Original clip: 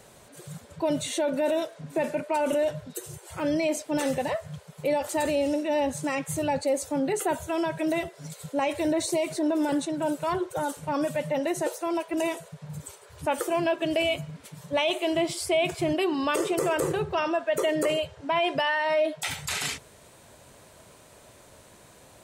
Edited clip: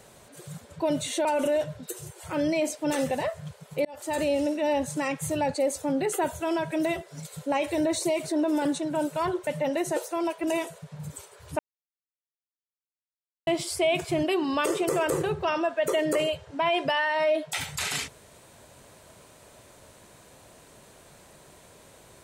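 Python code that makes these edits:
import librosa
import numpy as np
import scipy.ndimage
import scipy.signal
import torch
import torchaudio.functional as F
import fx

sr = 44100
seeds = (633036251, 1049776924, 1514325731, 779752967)

y = fx.edit(x, sr, fx.cut(start_s=1.25, length_s=1.07),
    fx.fade_in_span(start_s=4.92, length_s=0.38),
    fx.cut(start_s=10.54, length_s=0.63),
    fx.silence(start_s=13.29, length_s=1.88), tone=tone)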